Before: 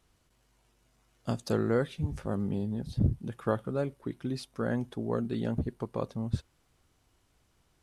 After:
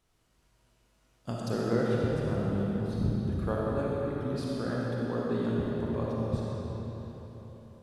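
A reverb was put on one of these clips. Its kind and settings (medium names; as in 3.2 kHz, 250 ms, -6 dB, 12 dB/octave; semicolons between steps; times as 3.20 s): algorithmic reverb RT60 4.2 s, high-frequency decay 0.8×, pre-delay 15 ms, DRR -5 dB; trim -4.5 dB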